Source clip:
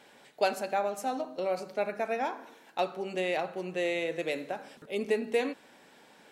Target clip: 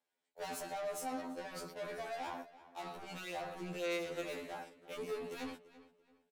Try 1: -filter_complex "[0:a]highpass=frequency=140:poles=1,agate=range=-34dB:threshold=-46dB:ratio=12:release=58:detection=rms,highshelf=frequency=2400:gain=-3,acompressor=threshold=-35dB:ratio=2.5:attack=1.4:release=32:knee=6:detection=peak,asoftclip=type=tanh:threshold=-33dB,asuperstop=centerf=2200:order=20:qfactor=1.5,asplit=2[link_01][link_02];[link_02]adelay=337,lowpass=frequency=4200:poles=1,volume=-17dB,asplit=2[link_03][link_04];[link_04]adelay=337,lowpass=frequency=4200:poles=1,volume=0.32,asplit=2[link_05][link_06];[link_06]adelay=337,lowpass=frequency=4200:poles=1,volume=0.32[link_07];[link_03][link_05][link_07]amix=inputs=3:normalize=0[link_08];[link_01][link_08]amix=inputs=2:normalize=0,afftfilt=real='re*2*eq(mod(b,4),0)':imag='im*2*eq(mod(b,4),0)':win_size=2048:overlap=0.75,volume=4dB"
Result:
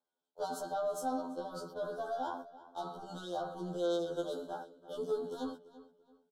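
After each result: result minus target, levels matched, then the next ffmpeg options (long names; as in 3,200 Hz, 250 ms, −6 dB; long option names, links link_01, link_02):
2,000 Hz band −10.0 dB; 8,000 Hz band −6.0 dB; soft clipping: distortion −8 dB
-filter_complex "[0:a]highpass=frequency=140:poles=1,agate=range=-34dB:threshold=-46dB:ratio=12:release=58:detection=rms,highshelf=frequency=2400:gain=-3,acompressor=threshold=-35dB:ratio=2.5:attack=1.4:release=32:knee=6:detection=peak,asoftclip=type=tanh:threshold=-33dB,asplit=2[link_01][link_02];[link_02]adelay=337,lowpass=frequency=4200:poles=1,volume=-17dB,asplit=2[link_03][link_04];[link_04]adelay=337,lowpass=frequency=4200:poles=1,volume=0.32,asplit=2[link_05][link_06];[link_06]adelay=337,lowpass=frequency=4200:poles=1,volume=0.32[link_07];[link_03][link_05][link_07]amix=inputs=3:normalize=0[link_08];[link_01][link_08]amix=inputs=2:normalize=0,afftfilt=real='re*2*eq(mod(b,4),0)':imag='im*2*eq(mod(b,4),0)':win_size=2048:overlap=0.75,volume=4dB"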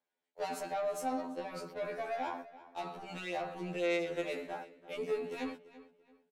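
8,000 Hz band −6.5 dB; soft clipping: distortion −8 dB
-filter_complex "[0:a]highpass=frequency=140:poles=1,highshelf=frequency=5300:gain=10.5,agate=range=-34dB:threshold=-46dB:ratio=12:release=58:detection=rms,highshelf=frequency=2400:gain=-3,acompressor=threshold=-35dB:ratio=2.5:attack=1.4:release=32:knee=6:detection=peak,asoftclip=type=tanh:threshold=-33dB,asplit=2[link_01][link_02];[link_02]adelay=337,lowpass=frequency=4200:poles=1,volume=-17dB,asplit=2[link_03][link_04];[link_04]adelay=337,lowpass=frequency=4200:poles=1,volume=0.32,asplit=2[link_05][link_06];[link_06]adelay=337,lowpass=frequency=4200:poles=1,volume=0.32[link_07];[link_03][link_05][link_07]amix=inputs=3:normalize=0[link_08];[link_01][link_08]amix=inputs=2:normalize=0,afftfilt=real='re*2*eq(mod(b,4),0)':imag='im*2*eq(mod(b,4),0)':win_size=2048:overlap=0.75,volume=4dB"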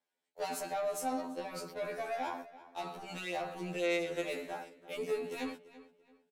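soft clipping: distortion −7 dB
-filter_complex "[0:a]highpass=frequency=140:poles=1,highshelf=frequency=5300:gain=10.5,agate=range=-34dB:threshold=-46dB:ratio=12:release=58:detection=rms,highshelf=frequency=2400:gain=-3,acompressor=threshold=-35dB:ratio=2.5:attack=1.4:release=32:knee=6:detection=peak,asoftclip=type=tanh:threshold=-41.5dB,asplit=2[link_01][link_02];[link_02]adelay=337,lowpass=frequency=4200:poles=1,volume=-17dB,asplit=2[link_03][link_04];[link_04]adelay=337,lowpass=frequency=4200:poles=1,volume=0.32,asplit=2[link_05][link_06];[link_06]adelay=337,lowpass=frequency=4200:poles=1,volume=0.32[link_07];[link_03][link_05][link_07]amix=inputs=3:normalize=0[link_08];[link_01][link_08]amix=inputs=2:normalize=0,afftfilt=real='re*2*eq(mod(b,4),0)':imag='im*2*eq(mod(b,4),0)':win_size=2048:overlap=0.75,volume=4dB"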